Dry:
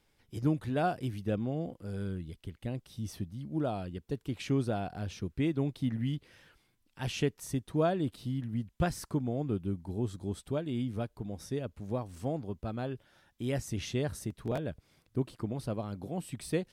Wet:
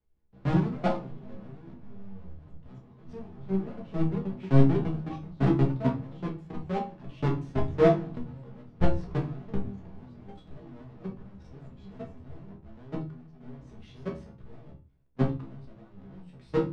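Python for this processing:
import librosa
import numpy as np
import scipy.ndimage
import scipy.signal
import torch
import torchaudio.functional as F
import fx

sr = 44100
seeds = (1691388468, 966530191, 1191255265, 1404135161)

y = fx.halfwave_hold(x, sr)
y = fx.low_shelf(y, sr, hz=340.0, db=4.0)
y = fx.hum_notches(y, sr, base_hz=60, count=5)
y = fx.level_steps(y, sr, step_db=22)
y = fx.comb_fb(y, sr, f0_hz=67.0, decay_s=0.26, harmonics='all', damping=0.0, mix_pct=90)
y = fx.echo_pitch(y, sr, ms=150, semitones=3, count=3, db_per_echo=-6.0)
y = fx.spacing_loss(y, sr, db_at_10k=33)
y = fx.room_shoebox(y, sr, seeds[0], volume_m3=200.0, walls='furnished', distance_m=1.4)
y = fx.band_widen(y, sr, depth_pct=40)
y = F.gain(torch.from_numpy(y), 5.0).numpy()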